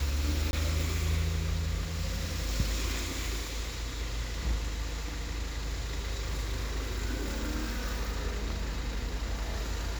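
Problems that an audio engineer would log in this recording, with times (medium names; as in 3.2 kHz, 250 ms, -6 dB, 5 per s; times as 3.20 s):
0.51–0.53 s: dropout 21 ms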